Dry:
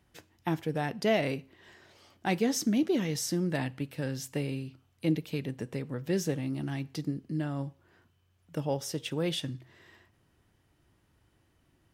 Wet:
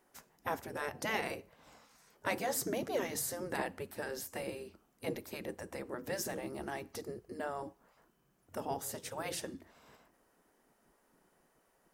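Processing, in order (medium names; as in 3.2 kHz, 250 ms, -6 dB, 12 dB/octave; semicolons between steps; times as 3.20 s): spectral gate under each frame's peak -10 dB weak; peaking EQ 3.2 kHz -12 dB 1.5 oct; trim +5.5 dB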